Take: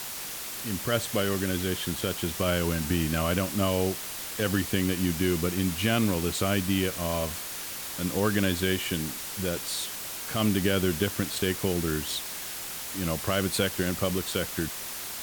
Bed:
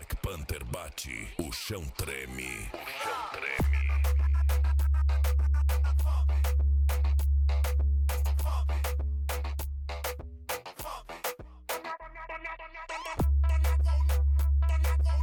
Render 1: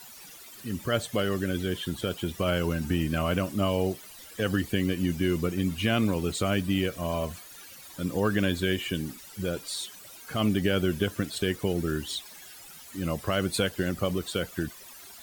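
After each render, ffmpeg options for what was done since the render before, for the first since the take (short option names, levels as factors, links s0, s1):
-af "afftdn=nr=15:nf=-37"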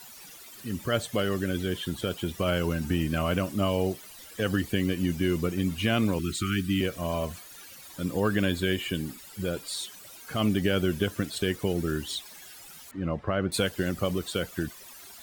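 -filter_complex "[0:a]asettb=1/sr,asplit=3[s0][s1][s2];[s0]atrim=end=6.194[s3];[s1]atrim=start=6.19:end=6.81,asetpts=PTS-STARTPTS,afade=t=in:d=0.004:c=qsin,afade=t=out:st=0.616:d=0.004:c=qsin,asuperstop=centerf=680:order=20:qfactor=0.86[s4];[s2]atrim=start=6.806[s5];[s3][s4]acrossfade=d=0.004:c1=hsin:c2=qsin[s6];[s6][s5]acrossfade=d=0.004:c1=qsin:c2=hsin,asettb=1/sr,asplit=3[s7][s8][s9];[s7]atrim=end=8.114[s10];[s8]atrim=start=8.11:end=9.73,asetpts=PTS-STARTPTS,afade=t=in:d=0.004:c=qsin,afade=t=out:st=1.616:d=0.004:c=qsin,bandreject=f=5900:w=12[s11];[s9]atrim=start=9.726[s12];[s10][s11]acrossfade=d=0.004:c1=hsin:c2=qsin[s13];[s13][s12]acrossfade=d=0.004:c1=qsin:c2=hsin,asettb=1/sr,asplit=3[s14][s15][s16];[s14]atrim=end=12.914[s17];[s15]atrim=start=12.91:end=13.52,asetpts=PTS-STARTPTS,afade=t=in:d=0.004:c=qsin,afade=t=out:st=0.606:d=0.004:c=qsin,lowpass=1800[s18];[s16]atrim=start=13.516[s19];[s17][s18]acrossfade=d=0.004:c1=hsin:c2=qsin[s20];[s20][s19]acrossfade=d=0.004:c1=qsin:c2=hsin"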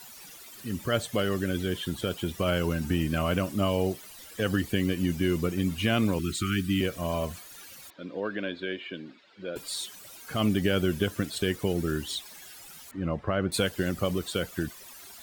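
-filter_complex "[0:a]asettb=1/sr,asplit=3[s0][s1][s2];[s0]atrim=end=7.904[s3];[s1]atrim=start=7.9:end=9.56,asetpts=PTS-STARTPTS,afade=t=in:d=0.004:c=qsin,afade=t=out:st=1.656:d=0.004:c=qsin,highpass=370,equalizer=f=420:t=q:w=4:g=-4,equalizer=f=830:t=q:w=4:g=-9,equalizer=f=1200:t=q:w=4:g=-7,equalizer=f=1900:t=q:w=4:g=-6,equalizer=f=2900:t=q:w=4:g=-7,lowpass=f=3400:w=0.5412,lowpass=f=3400:w=1.3066[s4];[s2]atrim=start=9.556[s5];[s3][s4]acrossfade=d=0.004:c1=hsin:c2=qsin[s6];[s6][s5]acrossfade=d=0.004:c1=qsin:c2=hsin"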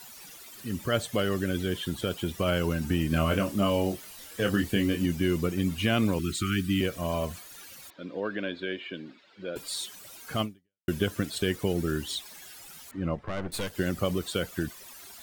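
-filter_complex "[0:a]asettb=1/sr,asplit=3[s0][s1][s2];[s0]atrim=end=3.084[s3];[s1]atrim=start=3.08:end=5.06,asetpts=PTS-STARTPTS,afade=t=in:d=0.004:c=qsin,afade=t=out:st=1.976:d=0.004:c=qsin,asplit=2[s4][s5];[s5]adelay=25,volume=0.531[s6];[s4][s6]amix=inputs=2:normalize=0,atrim=end_sample=87318[s7];[s2]atrim=start=5.056[s8];[s3][s7]acrossfade=d=0.004:c1=hsin:c2=qsin[s9];[s9][s8]acrossfade=d=0.004:c1=qsin:c2=hsin,asettb=1/sr,asplit=3[s10][s11][s12];[s10]atrim=end=13.154[s13];[s11]atrim=start=13.15:end=13.75,asetpts=PTS-STARTPTS,afade=t=in:d=0.004:c=qsin,afade=t=out:st=0.596:d=0.004:c=qsin,aeval=exprs='(tanh(25.1*val(0)+0.75)-tanh(0.75))/25.1':c=same[s14];[s12]atrim=start=13.746[s15];[s13][s14]acrossfade=d=0.004:c1=hsin:c2=qsin[s16];[s16][s15]acrossfade=d=0.004:c1=qsin:c2=hsin,asplit=2[s17][s18];[s17]atrim=end=10.88,asetpts=PTS-STARTPTS,afade=t=out:st=10.41:d=0.47:c=exp[s19];[s18]atrim=start=10.88,asetpts=PTS-STARTPTS,afade=t=in:d=0.004:c=hsin[s20];[s19][s20]concat=n=2:v=0:a=1"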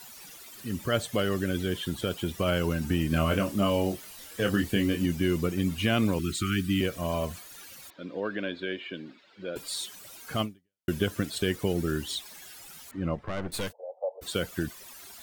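-filter_complex "[0:a]asplit=3[s0][s1][s2];[s0]afade=t=out:st=13.71:d=0.02[s3];[s1]asuperpass=centerf=660:order=12:qfactor=1.6,afade=t=in:st=13.71:d=0.02,afade=t=out:st=14.21:d=0.02[s4];[s2]afade=t=in:st=14.21:d=0.02[s5];[s3][s4][s5]amix=inputs=3:normalize=0"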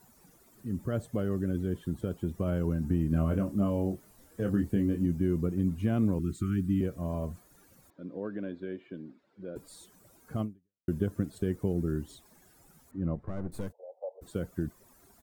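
-af "firequalizer=gain_entry='entry(180,0);entry(560,-7);entry(2900,-24);entry(7400,-15)':delay=0.05:min_phase=1"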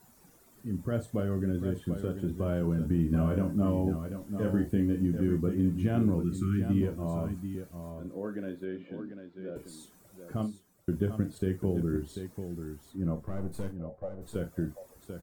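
-filter_complex "[0:a]asplit=2[s0][s1];[s1]adelay=29,volume=0.211[s2];[s0][s2]amix=inputs=2:normalize=0,aecho=1:1:42|741:0.299|0.376"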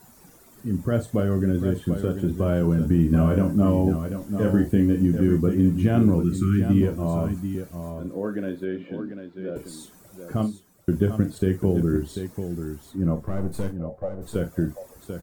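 -af "volume=2.51"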